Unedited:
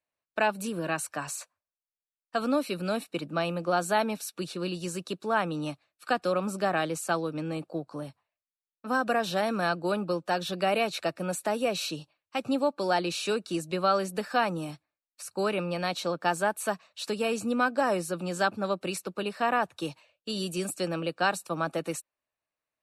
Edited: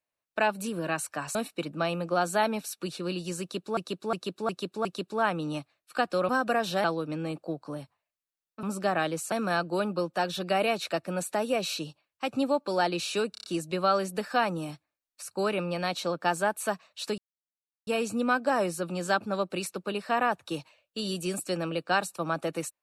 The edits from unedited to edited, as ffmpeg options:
-filter_complex "[0:a]asplit=15[a][b][c][d][e][f][g][h][i][j][k][l][m][n][o];[a]atrim=end=1.352[p];[b]atrim=start=2.908:end=5.332[q];[c]atrim=start=4.968:end=5.332[r];[d]atrim=start=4.968:end=5.332[s];[e]atrim=start=4.968:end=5.332[t];[f]atrim=start=4.968:end=6.412[u];[g]atrim=start=8.888:end=9.442[v];[h]atrim=start=7.098:end=8.892[w];[i]atrim=start=6.408:end=7.102[x];[j]atrim=start=9.438:end=13.472[y];[k]atrim=start=13.438:end=13.472[z];[l]atrim=start=13.438:end=13.472[aa];[m]atrim=start=13.438:end=13.472[ab];[n]atrim=start=13.438:end=17.18,asetpts=PTS-STARTPTS,afade=t=out:st=3.738:d=0.004:c=hsin,apad=pad_dur=0.69[ac];[o]atrim=start=17.18,asetpts=PTS-STARTPTS,afade=t=in:d=0.004:c=hsin[ad];[p][q]acrossfade=d=0.004:c1=hsin:c2=hsin[ae];[ae][r]acrossfade=d=0.004:c1=hsin:c2=hsin[af];[af][s]acrossfade=d=0.004:c1=hsin:c2=hsin[ag];[ag][t]acrossfade=d=0.004:c1=hsin:c2=hsin[ah];[ah][u]acrossfade=d=0.004:c1=hsin:c2=hsin[ai];[ai][v]acrossfade=d=0.004:c1=hsin:c2=hsin[aj];[aj][w]acrossfade=d=0.004:c1=hsin:c2=hsin[ak];[ak][x]acrossfade=d=0.004:c1=hsin:c2=hsin[al];[al][y]acrossfade=d=0.004:c1=hsin:c2=hsin[am];[am][z]acrossfade=d=0.004:c1=hsin:c2=hsin[an];[an][aa]acrossfade=d=0.004:c1=hsin:c2=hsin[ao];[ao][ab]acrossfade=d=0.004:c1=hsin:c2=hsin[ap];[ac][ad]concat=n=2:v=0:a=1[aq];[ap][aq]acrossfade=d=0.004:c1=hsin:c2=hsin"

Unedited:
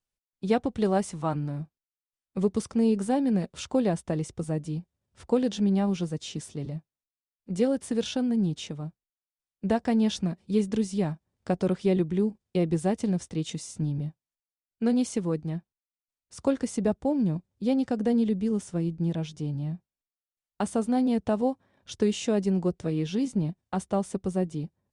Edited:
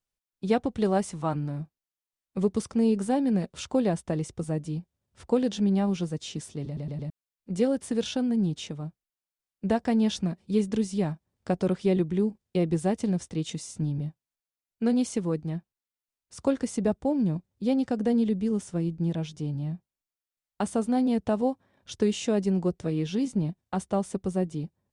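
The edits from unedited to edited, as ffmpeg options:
-filter_complex "[0:a]asplit=5[a][b][c][d][e];[a]atrim=end=6.772[f];[b]atrim=start=6.658:end=6.772[g];[c]atrim=start=6.658:end=6.772[h];[d]atrim=start=6.658:end=6.772[i];[e]atrim=start=7.098[j];[f][g]acrossfade=d=0.004:c1=hsin:c2=hsin[k];[k][h]acrossfade=d=0.004:c1=hsin:c2=hsin[l];[l][i]acrossfade=d=0.004:c1=hsin:c2=hsin[m];[m][j]acrossfade=d=0.004:c1=hsin:c2=hsin"

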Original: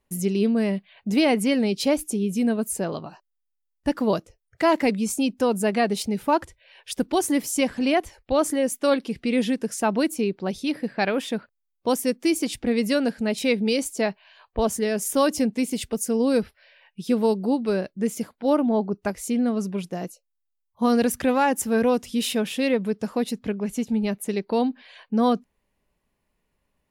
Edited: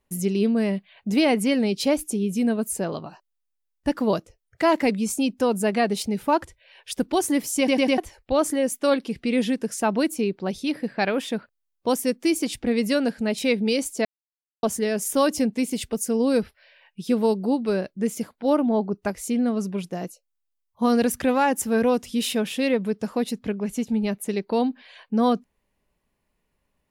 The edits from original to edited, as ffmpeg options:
-filter_complex "[0:a]asplit=7[a][b][c][d][e][f][g];[a]atrim=end=7.682[h];[b]atrim=start=7.578:end=7.682[i];[c]atrim=start=7.578:end=7.682[j];[d]atrim=start=7.578:end=7.682[k];[e]atrim=start=7.978:end=14.05,asetpts=PTS-STARTPTS,afade=t=out:st=6.068:d=0.004:c=hsin[l];[f]atrim=start=14.05:end=14.63,asetpts=PTS-STARTPTS,volume=0[m];[g]atrim=start=14.63,asetpts=PTS-STARTPTS,afade=t=in:d=0.004:c=hsin[n];[h][i]acrossfade=d=0.004:c1=hsin:c2=hsin[o];[o][j]acrossfade=d=0.004:c1=hsin:c2=hsin[p];[p][k]acrossfade=d=0.004:c1=hsin:c2=hsin[q];[l][m][n]concat=n=3:v=0:a=1[r];[q][r]acrossfade=d=0.004:c1=hsin:c2=hsin"

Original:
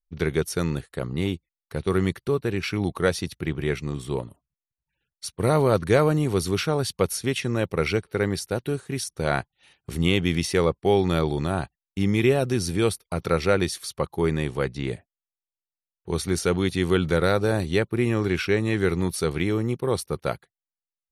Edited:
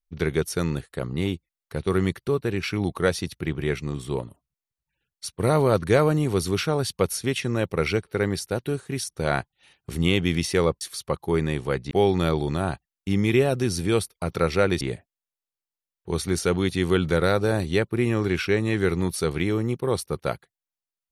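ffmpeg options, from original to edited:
-filter_complex "[0:a]asplit=4[a][b][c][d];[a]atrim=end=10.812[e];[b]atrim=start=13.708:end=14.812[f];[c]atrim=start=10.808:end=13.712[g];[d]atrim=start=14.808[h];[e][f]acrossfade=d=0.004:c1=hsin:c2=hsin[i];[i][g]acrossfade=d=0.004:c1=hsin:c2=hsin[j];[j][h]acrossfade=d=0.004:c1=hsin:c2=hsin"

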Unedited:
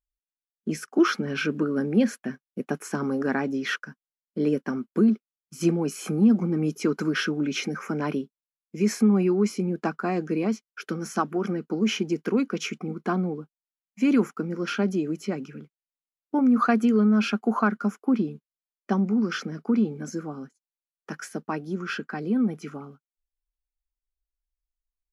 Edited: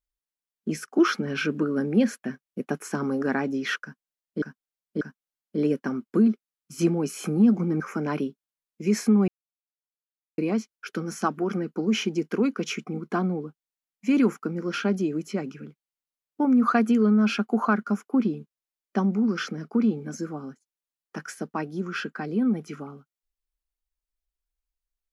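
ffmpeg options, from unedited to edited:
-filter_complex "[0:a]asplit=6[a][b][c][d][e][f];[a]atrim=end=4.422[g];[b]atrim=start=3.828:end=4.422[h];[c]atrim=start=3.828:end=6.622[i];[d]atrim=start=7.738:end=9.22,asetpts=PTS-STARTPTS,afade=t=out:st=1.478:d=0.004:c=hsin[j];[e]atrim=start=9.22:end=10.32,asetpts=PTS-STARTPTS,volume=0[k];[f]atrim=start=10.32,asetpts=PTS-STARTPTS,afade=t=in:d=0.004:c=hsin[l];[g][h]acrossfade=d=0.004:c1=hsin:c2=hsin[m];[m][i]acrossfade=d=0.004:c1=hsin:c2=hsin[n];[j][k][l]concat=n=3:v=0:a=1[o];[n][o]acrossfade=d=0.004:c1=hsin:c2=hsin"

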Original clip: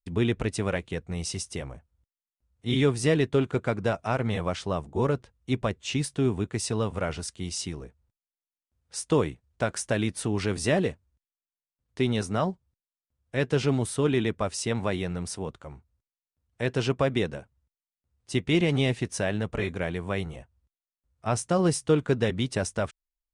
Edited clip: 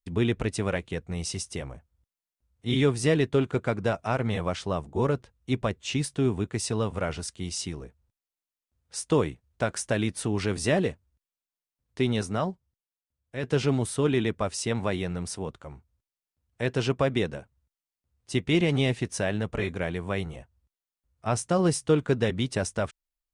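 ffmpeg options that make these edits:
-filter_complex "[0:a]asplit=2[a][b];[a]atrim=end=13.43,asetpts=PTS-STARTPTS,afade=t=out:st=12.19:d=1.24:c=qua:silence=0.473151[c];[b]atrim=start=13.43,asetpts=PTS-STARTPTS,afade=t=in:d=0.004:c=hsin:silence=0.473151[d];[c][d]concat=n=2:v=0:a=1"

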